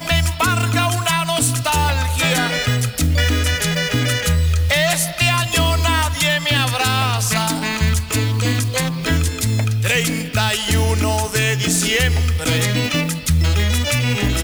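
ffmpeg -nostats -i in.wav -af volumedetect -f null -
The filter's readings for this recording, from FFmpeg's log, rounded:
mean_volume: -17.5 dB
max_volume: -4.7 dB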